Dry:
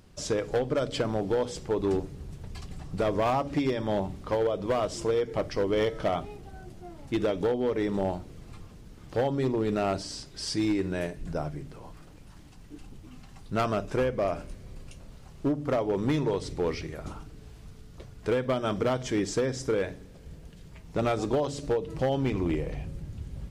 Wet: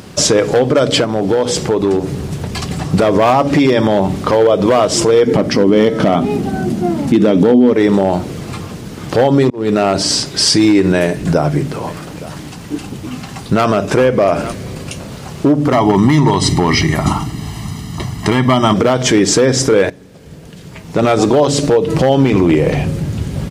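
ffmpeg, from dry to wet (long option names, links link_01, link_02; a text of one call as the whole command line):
ffmpeg -i in.wav -filter_complex "[0:a]asettb=1/sr,asplit=3[link_01][link_02][link_03];[link_01]atrim=end=1.044[link_04];[link_02]atrim=start=1.04:end=2.66,asetpts=PTS-STARTPTS,afade=type=in:duration=0.004:curve=qsin,afade=type=out:start_time=1.616:duration=0.004:curve=qsin,acompressor=threshold=-35dB:ratio=6:attack=3.2:release=140:knee=1:detection=peak[link_05];[link_03]atrim=start=2.656[link_06];[link_04][link_05]acrossfade=duration=0.004:curve1=hsin:curve2=qsin[link_07];[link_07][link_06]acrossfade=duration=0.004:curve1=qsin:curve2=hsin,asettb=1/sr,asplit=3[link_08][link_09][link_10];[link_08]atrim=end=5.264[link_11];[link_09]atrim=start=5.26:end=7.74,asetpts=PTS-STARTPTS,afade=type=in:duration=0.004:curve=qsin,afade=type=out:start_time=2.476:duration=0.004:curve=qsin,equalizer=frequency=230:width=1.7:gain=14[link_12];[link_10]atrim=start=7.736[link_13];[link_11][link_12]acrossfade=duration=0.004:curve1=hsin:curve2=qsin[link_14];[link_14][link_13]acrossfade=duration=0.004:curve1=qsin:curve2=hsin,asplit=3[link_15][link_16][link_17];[link_15]afade=type=out:start_time=11.86:duration=0.02[link_18];[link_16]aecho=1:1:866:0.0668,afade=type=in:start_time=11.86:duration=0.02,afade=type=out:start_time=14.51:duration=0.02[link_19];[link_17]afade=type=in:start_time=14.51:duration=0.02[link_20];[link_18][link_19][link_20]amix=inputs=3:normalize=0,asettb=1/sr,asplit=3[link_21][link_22][link_23];[link_21]atrim=end=15.724[link_24];[link_22]atrim=start=15.72:end=18.74,asetpts=PTS-STARTPTS,afade=type=in:duration=0.004:curve=qsin,afade=type=out:start_time=3.016:duration=0.004:curve=qsin,aecho=1:1:1:0.87,atrim=end_sample=133182[link_25];[link_23]atrim=start=18.736[link_26];[link_24][link_25]acrossfade=duration=0.004:curve1=hsin:curve2=qsin[link_27];[link_27][link_26]acrossfade=duration=0.004:curve1=qsin:curve2=hsin,asplit=3[link_28][link_29][link_30];[link_28]atrim=end=9.5,asetpts=PTS-STARTPTS,afade=type=out:start_time=9.496:duration=0.004:curve=hsin[link_31];[link_29]atrim=start=9.5:end=19.9,asetpts=PTS-STARTPTS,afade=type=in:duration=0.61,afade=type=out:start_time=10.396:duration=0.004:curve=hsin:silence=0.125893[link_32];[link_30]atrim=start=19.9,asetpts=PTS-STARTPTS,afade=type=in:duration=1.85:silence=0.125893[link_33];[link_31][link_32][link_33]concat=n=3:v=0:a=1,highpass=120,acompressor=threshold=-30dB:ratio=4,alimiter=level_in=25.5dB:limit=-1dB:release=50:level=0:latency=1,volume=-1dB" out.wav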